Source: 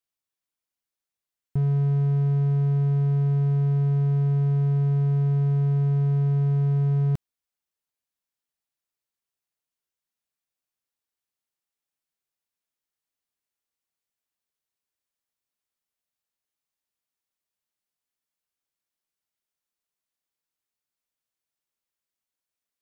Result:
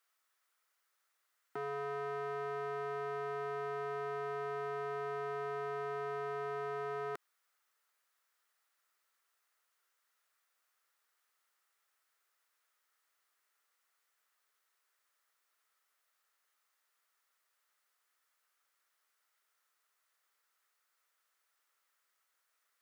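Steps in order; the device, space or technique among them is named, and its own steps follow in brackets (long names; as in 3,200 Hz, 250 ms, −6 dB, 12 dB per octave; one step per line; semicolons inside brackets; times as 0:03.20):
laptop speaker (high-pass filter 390 Hz 24 dB per octave; parametric band 1,300 Hz +11.5 dB 0.56 octaves; parametric band 1,900 Hz +6 dB 0.38 octaves; brickwall limiter −38 dBFS, peak gain reduction 12.5 dB)
level +7.5 dB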